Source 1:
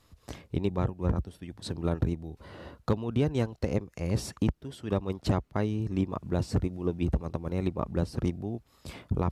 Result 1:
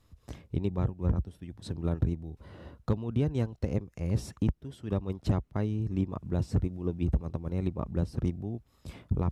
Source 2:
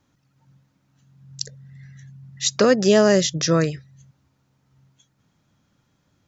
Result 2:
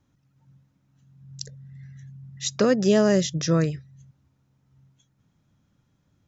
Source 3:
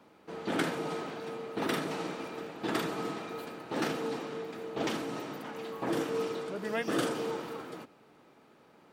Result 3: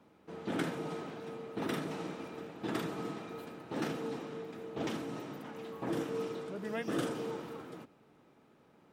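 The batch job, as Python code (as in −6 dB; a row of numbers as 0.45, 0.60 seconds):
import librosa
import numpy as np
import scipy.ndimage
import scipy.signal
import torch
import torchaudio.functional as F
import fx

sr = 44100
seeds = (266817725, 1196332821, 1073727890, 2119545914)

y = fx.low_shelf(x, sr, hz=260.0, db=8.5)
y = fx.notch(y, sr, hz=4500.0, q=18.0)
y = y * librosa.db_to_amplitude(-6.5)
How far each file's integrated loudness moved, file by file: −1.0, −3.0, −4.0 LU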